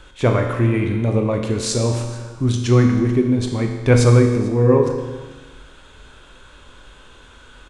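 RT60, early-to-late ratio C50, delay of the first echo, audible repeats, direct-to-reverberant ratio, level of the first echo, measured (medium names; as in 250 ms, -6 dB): 1.3 s, 5.0 dB, 442 ms, 1, 3.0 dB, -22.5 dB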